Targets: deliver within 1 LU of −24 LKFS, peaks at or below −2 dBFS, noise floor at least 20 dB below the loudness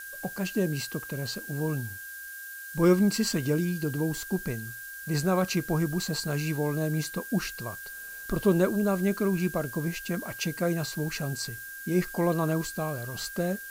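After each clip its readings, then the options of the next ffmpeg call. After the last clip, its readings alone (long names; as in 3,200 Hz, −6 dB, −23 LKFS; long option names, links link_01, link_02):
interfering tone 1,600 Hz; level of the tone −40 dBFS; background noise floor −41 dBFS; target noise floor −49 dBFS; integrated loudness −29.0 LKFS; sample peak −12.0 dBFS; target loudness −24.0 LKFS
→ -af "bandreject=frequency=1600:width=30"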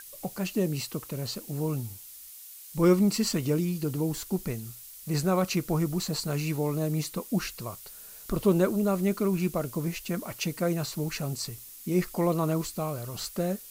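interfering tone none found; background noise floor −47 dBFS; target noise floor −49 dBFS
→ -af "afftdn=noise_reduction=6:noise_floor=-47"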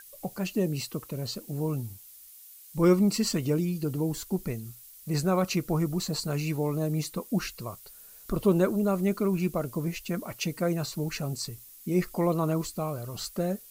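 background noise floor −50 dBFS; integrated loudness −29.0 LKFS; sample peak −12.5 dBFS; target loudness −24.0 LKFS
→ -af "volume=5dB"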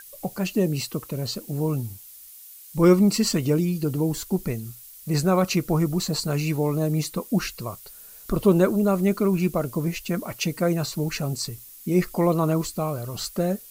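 integrated loudness −24.0 LKFS; sample peak −7.5 dBFS; background noise floor −45 dBFS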